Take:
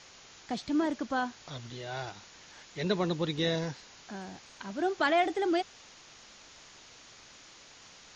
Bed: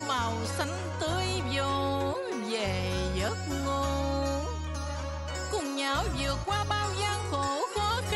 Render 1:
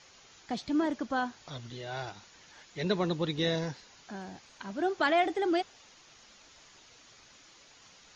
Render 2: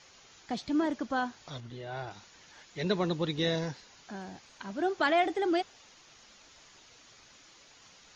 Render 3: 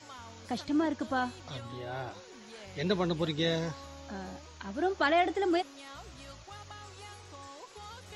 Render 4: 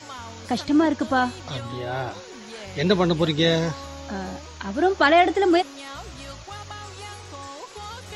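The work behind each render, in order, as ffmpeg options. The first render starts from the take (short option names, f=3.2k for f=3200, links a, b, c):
-af "afftdn=nr=6:nf=-54"
-filter_complex "[0:a]asettb=1/sr,asplit=3[a][b][c];[a]atrim=end=1.604[d];[b]atrim=start=1.6:end=2.11,asetpts=PTS-STARTPTS,afade=t=in:d=0.004:c=qsin,afade=t=out:st=0.506:d=0.004:c=qsin,highshelf=f=3.1k:g=-11[e];[c]atrim=start=2.106[f];[d][e]acrossfade=d=0.004:c1=hsin:c2=qsin[g];[g][f]acrossfade=d=0.004:c1=qsin:c2=hsin"
-filter_complex "[1:a]volume=-18.5dB[a];[0:a][a]amix=inputs=2:normalize=0"
-af "volume=10dB"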